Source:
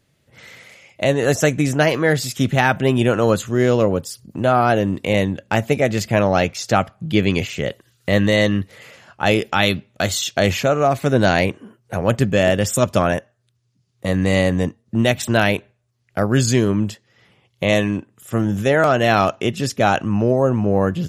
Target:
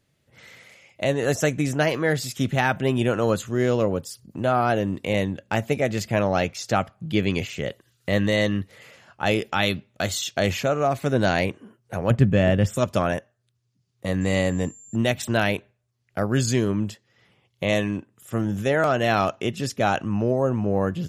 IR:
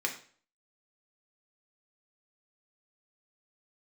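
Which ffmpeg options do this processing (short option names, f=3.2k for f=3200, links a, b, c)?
-filter_complex "[0:a]asettb=1/sr,asplit=3[a][b][c];[a]atrim=end=12.104[d];[b]atrim=start=12.1:end=12.77,asetpts=PTS-STARTPTS,afade=t=in:d=0.004:c=qsin,afade=t=out:st=0.666:d=0.004:c=qsin,bass=f=250:g=8,treble=f=4k:g=-10[e];[c]atrim=start=12.766[f];[d][e]acrossfade=d=0.004:c1=hsin:c2=qsin[g];[g][f]acrossfade=d=0.004:c1=qsin:c2=hsin,asettb=1/sr,asplit=3[h][i][j];[h]atrim=end=14.214[k];[i]atrim=start=14.21:end=14.96,asetpts=PTS-STARTPTS,afade=t=in:d=0.004:c=qsin,afade=t=out:st=0.746:d=0.004:c=qsin,aeval=exprs='val(0)+0.0112*sin(2*PI*7300*n/s)':c=same[l];[j]atrim=start=14.956[m];[k][l]acrossfade=d=0.004:c1=hsin:c2=qsin[n];[n][m]acrossfade=d=0.004:c1=qsin:c2=hsin,volume=-5.5dB"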